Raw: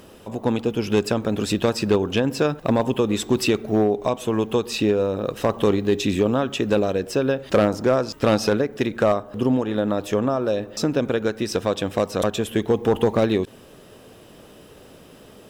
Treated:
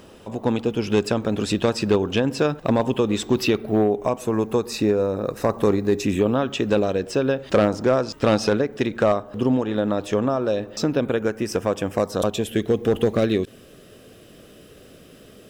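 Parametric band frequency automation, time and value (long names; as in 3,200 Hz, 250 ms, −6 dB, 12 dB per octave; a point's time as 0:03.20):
parametric band −14.5 dB 0.37 octaves
0:03.06 14,000 Hz
0:04.26 3,100 Hz
0:05.98 3,100 Hz
0:06.61 13,000 Hz
0:10.72 13,000 Hz
0:11.24 3,900 Hz
0:11.92 3,900 Hz
0:12.59 900 Hz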